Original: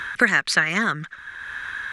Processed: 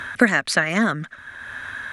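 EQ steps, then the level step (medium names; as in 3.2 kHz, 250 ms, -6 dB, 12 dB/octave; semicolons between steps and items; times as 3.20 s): fifteen-band graphic EQ 100 Hz +11 dB, 250 Hz +10 dB, 630 Hz +11 dB, 10 kHz +6 dB; -2.0 dB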